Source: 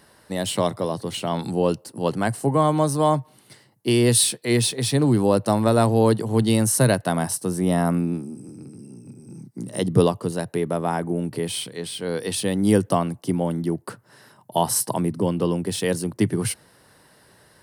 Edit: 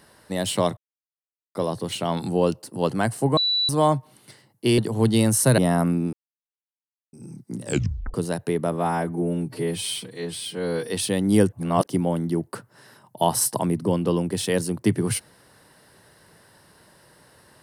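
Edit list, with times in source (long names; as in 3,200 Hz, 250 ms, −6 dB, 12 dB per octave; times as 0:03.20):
0:00.77: splice in silence 0.78 s
0:02.59–0:02.91: beep over 3,950 Hz −19 dBFS
0:04.00–0:06.12: remove
0:06.92–0:07.65: remove
0:08.20–0:09.20: silence
0:09.71: tape stop 0.50 s
0:10.79–0:12.24: time-stretch 1.5×
0:12.87–0:13.21: reverse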